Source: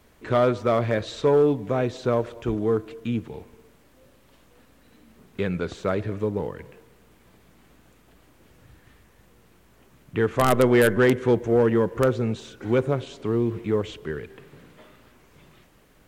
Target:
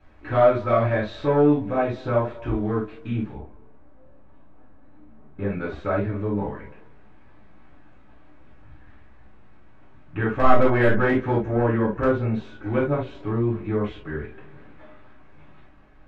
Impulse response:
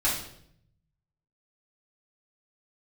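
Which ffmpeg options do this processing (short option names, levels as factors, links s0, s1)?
-filter_complex "[0:a]asetnsamples=n=441:p=0,asendcmd='3.33 lowpass f 1100;5.49 lowpass f 2200',lowpass=2600[s0];[1:a]atrim=start_sample=2205,atrim=end_sample=3528[s1];[s0][s1]afir=irnorm=-1:irlink=0,volume=0.422"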